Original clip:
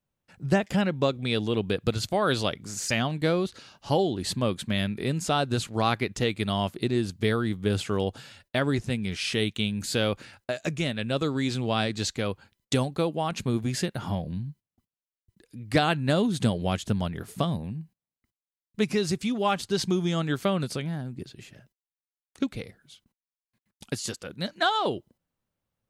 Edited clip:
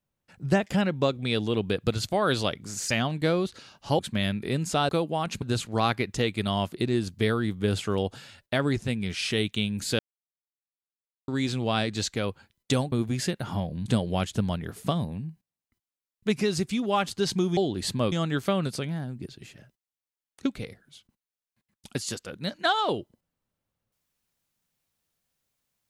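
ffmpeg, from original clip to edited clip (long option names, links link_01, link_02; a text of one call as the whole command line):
ffmpeg -i in.wav -filter_complex "[0:a]asplit=10[link_01][link_02][link_03][link_04][link_05][link_06][link_07][link_08][link_09][link_10];[link_01]atrim=end=3.992[link_11];[link_02]atrim=start=4.538:end=5.442[link_12];[link_03]atrim=start=12.938:end=13.472[link_13];[link_04]atrim=start=5.438:end=10.01,asetpts=PTS-STARTPTS,afade=type=out:start_time=4.568:duration=0.004:curve=hsin[link_14];[link_05]atrim=start=10.01:end=11.3,asetpts=PTS-STARTPTS,volume=0[link_15];[link_06]atrim=start=11.3:end=12.942,asetpts=PTS-STARTPTS,afade=type=in:duration=0.004:curve=hsin[link_16];[link_07]atrim=start=13.468:end=14.412[link_17];[link_08]atrim=start=16.378:end=20.092[link_18];[link_09]atrim=start=3.988:end=4.542[link_19];[link_10]atrim=start=20.088[link_20];[link_11][link_12]acrossfade=duration=0.004:curve1=hsin:curve2=hsin[link_21];[link_21][link_13]acrossfade=duration=0.004:curve1=hsin:curve2=hsin[link_22];[link_14][link_15][link_16]concat=n=3:v=0:a=1[link_23];[link_22][link_23]acrossfade=duration=0.004:curve1=hsin:curve2=hsin[link_24];[link_24][link_17]acrossfade=duration=0.004:curve1=hsin:curve2=hsin[link_25];[link_25][link_18]acrossfade=duration=0.004:curve1=hsin:curve2=hsin[link_26];[link_26][link_19]acrossfade=duration=0.004:curve1=hsin:curve2=hsin[link_27];[link_27][link_20]acrossfade=duration=0.004:curve1=hsin:curve2=hsin" out.wav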